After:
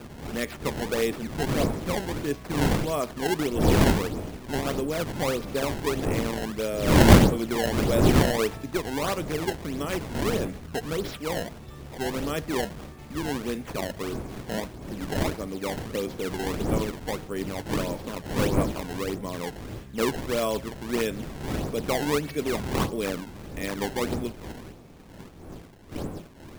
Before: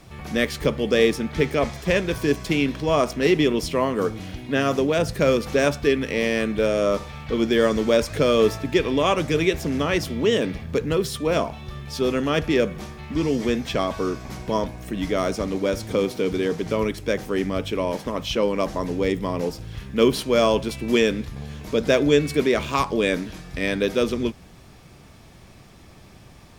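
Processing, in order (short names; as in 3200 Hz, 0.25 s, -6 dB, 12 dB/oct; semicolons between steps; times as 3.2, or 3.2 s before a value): wind noise 350 Hz -21 dBFS; decimation with a swept rate 21×, swing 160% 1.6 Hz; gain -8 dB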